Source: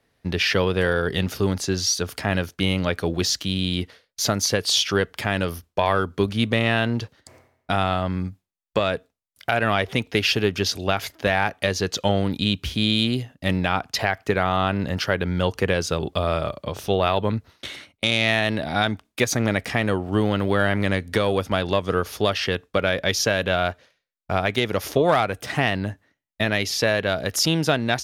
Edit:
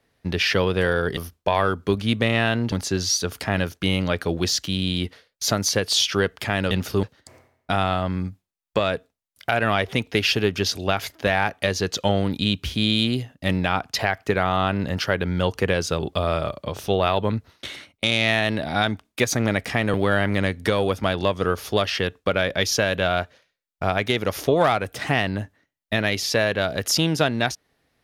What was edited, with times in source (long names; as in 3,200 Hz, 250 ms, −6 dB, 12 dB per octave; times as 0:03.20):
0:01.17–0:01.49: swap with 0:05.48–0:07.03
0:19.94–0:20.42: remove